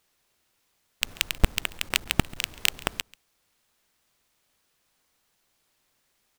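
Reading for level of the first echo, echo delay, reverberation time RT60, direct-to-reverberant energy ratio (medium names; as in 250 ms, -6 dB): -22.0 dB, 138 ms, no reverb, no reverb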